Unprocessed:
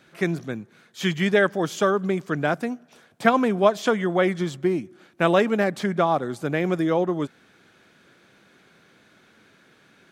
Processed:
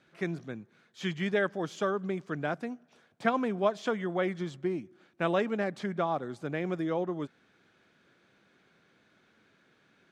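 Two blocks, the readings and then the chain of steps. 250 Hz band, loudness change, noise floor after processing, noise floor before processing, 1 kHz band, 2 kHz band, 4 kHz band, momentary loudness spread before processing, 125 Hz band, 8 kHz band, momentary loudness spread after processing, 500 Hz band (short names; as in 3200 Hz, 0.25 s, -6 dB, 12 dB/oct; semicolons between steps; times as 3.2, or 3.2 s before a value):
-9.0 dB, -9.0 dB, -67 dBFS, -58 dBFS, -9.0 dB, -9.5 dB, -10.0 dB, 10 LU, -9.0 dB, under -10 dB, 9 LU, -9.0 dB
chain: air absorption 53 m; gain -9 dB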